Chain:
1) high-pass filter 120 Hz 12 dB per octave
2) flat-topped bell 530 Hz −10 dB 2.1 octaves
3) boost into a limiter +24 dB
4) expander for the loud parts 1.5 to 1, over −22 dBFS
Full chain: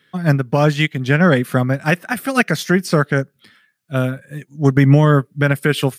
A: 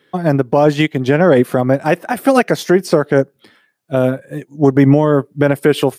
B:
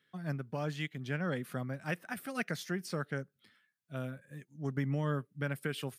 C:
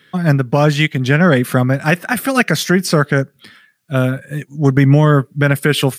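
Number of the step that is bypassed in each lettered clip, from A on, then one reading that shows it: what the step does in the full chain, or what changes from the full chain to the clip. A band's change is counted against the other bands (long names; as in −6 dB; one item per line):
2, 500 Hz band +7.5 dB
3, change in crest factor +2.5 dB
4, 8 kHz band +4.0 dB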